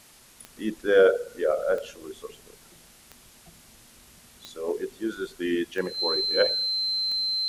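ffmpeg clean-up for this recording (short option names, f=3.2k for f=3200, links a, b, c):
-af "adeclick=t=4,bandreject=f=4.1k:w=30,afwtdn=0.0025"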